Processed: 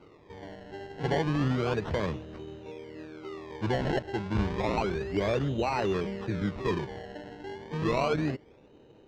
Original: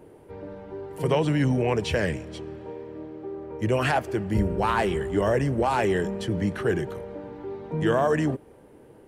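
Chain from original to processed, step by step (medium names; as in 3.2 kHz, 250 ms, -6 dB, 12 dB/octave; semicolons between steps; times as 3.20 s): decimation with a swept rate 25×, swing 100% 0.31 Hz; distance through air 180 m; trim -4.5 dB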